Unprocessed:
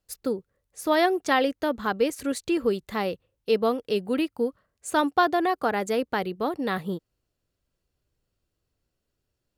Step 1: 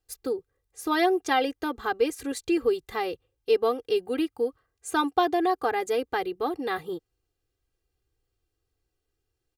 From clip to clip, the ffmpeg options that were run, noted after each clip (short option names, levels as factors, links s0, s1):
-af "aecho=1:1:2.5:0.89,volume=0.631"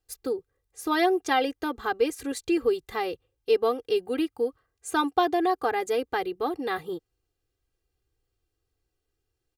-af anull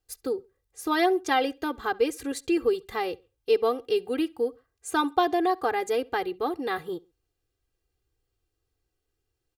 -filter_complex "[0:a]asplit=2[s0][s1];[s1]adelay=67,lowpass=f=4900:p=1,volume=0.0631,asplit=2[s2][s3];[s3]adelay=67,lowpass=f=4900:p=1,volume=0.32[s4];[s0][s2][s4]amix=inputs=3:normalize=0"